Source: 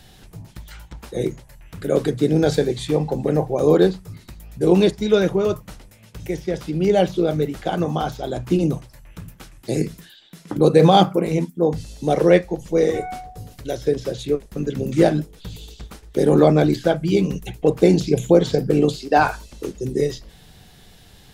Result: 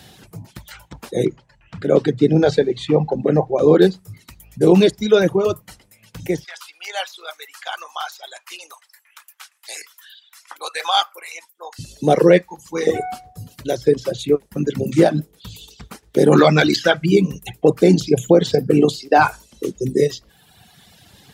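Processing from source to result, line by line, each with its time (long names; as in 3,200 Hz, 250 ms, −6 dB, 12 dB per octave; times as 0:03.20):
0:01.25–0:03.82: high-frequency loss of the air 110 metres
0:06.44–0:11.79: high-pass filter 1,000 Hz 24 dB per octave
0:12.42–0:12.87: low shelf with overshoot 780 Hz −6.5 dB, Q 3
0:16.32–0:17.06: flat-topped bell 2,700 Hz +10.5 dB 2.9 octaves
whole clip: reverb reduction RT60 1.4 s; high-pass filter 100 Hz 12 dB per octave; boost into a limiter +6 dB; level −1 dB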